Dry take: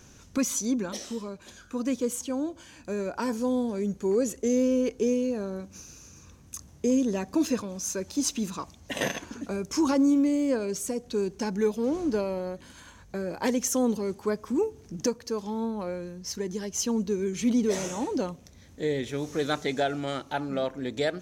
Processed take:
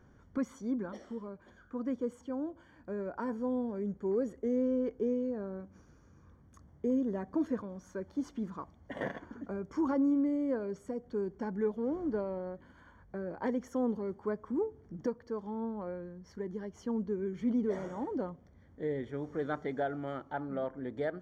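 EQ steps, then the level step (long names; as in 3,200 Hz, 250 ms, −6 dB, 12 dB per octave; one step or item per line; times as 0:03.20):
Savitzky-Golay smoothing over 41 samples
−6.5 dB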